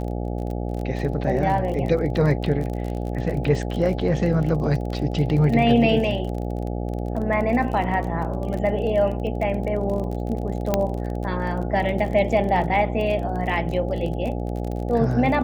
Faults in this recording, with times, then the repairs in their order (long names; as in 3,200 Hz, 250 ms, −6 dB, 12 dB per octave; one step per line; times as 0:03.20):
mains buzz 60 Hz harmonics 14 −27 dBFS
surface crackle 32 per second −29 dBFS
0:10.74: click −6 dBFS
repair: click removal
hum removal 60 Hz, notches 14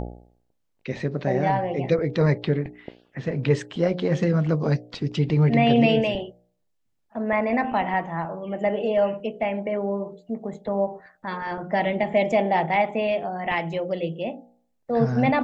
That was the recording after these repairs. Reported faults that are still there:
none of them is left